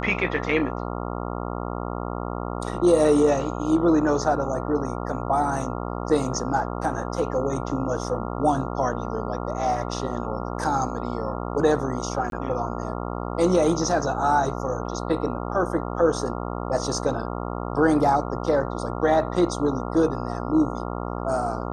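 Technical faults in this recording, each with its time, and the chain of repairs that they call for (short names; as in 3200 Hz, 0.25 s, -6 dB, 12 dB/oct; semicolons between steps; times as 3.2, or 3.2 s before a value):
buzz 60 Hz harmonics 23 -30 dBFS
12.3–12.32 gap 22 ms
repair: de-hum 60 Hz, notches 23; interpolate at 12.3, 22 ms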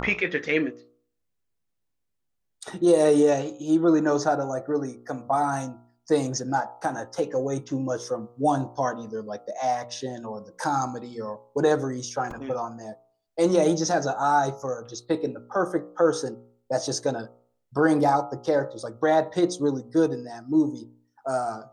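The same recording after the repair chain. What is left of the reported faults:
none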